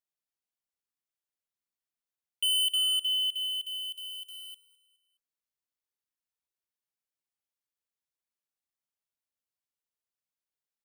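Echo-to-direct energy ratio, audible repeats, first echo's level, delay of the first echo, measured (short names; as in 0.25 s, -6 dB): -18.5 dB, 3, -19.5 dB, 0.209 s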